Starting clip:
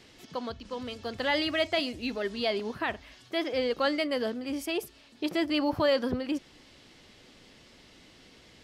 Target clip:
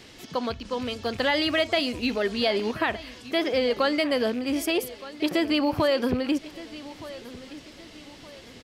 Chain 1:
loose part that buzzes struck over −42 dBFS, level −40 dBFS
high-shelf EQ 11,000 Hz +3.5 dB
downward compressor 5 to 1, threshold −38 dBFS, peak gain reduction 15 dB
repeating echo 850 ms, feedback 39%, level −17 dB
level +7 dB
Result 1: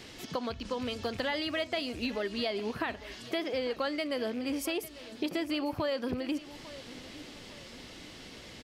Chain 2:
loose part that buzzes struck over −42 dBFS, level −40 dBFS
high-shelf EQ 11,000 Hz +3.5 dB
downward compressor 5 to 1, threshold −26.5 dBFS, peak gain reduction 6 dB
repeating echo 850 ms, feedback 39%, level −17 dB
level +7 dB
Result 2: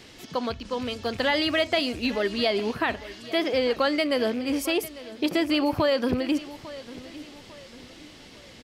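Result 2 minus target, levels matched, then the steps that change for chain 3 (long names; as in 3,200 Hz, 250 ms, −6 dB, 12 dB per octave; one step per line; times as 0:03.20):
echo 369 ms early
change: repeating echo 1,219 ms, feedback 39%, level −17 dB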